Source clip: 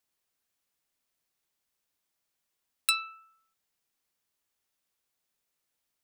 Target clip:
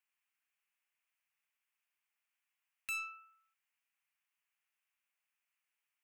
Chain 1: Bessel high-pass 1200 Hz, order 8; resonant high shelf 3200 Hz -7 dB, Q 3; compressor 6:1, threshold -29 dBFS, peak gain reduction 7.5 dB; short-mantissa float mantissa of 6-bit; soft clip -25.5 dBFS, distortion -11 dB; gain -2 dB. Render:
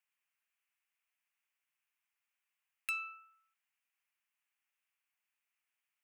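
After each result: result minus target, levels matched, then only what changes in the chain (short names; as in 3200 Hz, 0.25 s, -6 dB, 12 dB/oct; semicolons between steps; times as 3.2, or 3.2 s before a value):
compressor: peak gain reduction +7.5 dB; soft clip: distortion -7 dB
remove: compressor 6:1, threshold -29 dBFS, peak gain reduction 7.5 dB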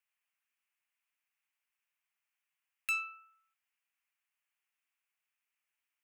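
soft clip: distortion -5 dB
change: soft clip -34 dBFS, distortion -4 dB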